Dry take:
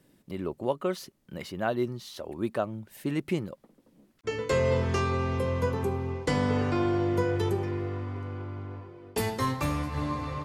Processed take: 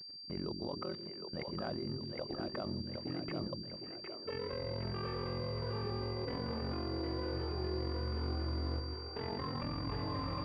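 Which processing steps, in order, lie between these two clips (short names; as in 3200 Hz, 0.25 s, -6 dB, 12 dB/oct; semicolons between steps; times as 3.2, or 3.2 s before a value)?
ring modulator 22 Hz; level quantiser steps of 22 dB; on a send: split-band echo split 360 Hz, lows 0.145 s, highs 0.761 s, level -4 dB; on the sum: pulse-width modulation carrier 4700 Hz; gain +3.5 dB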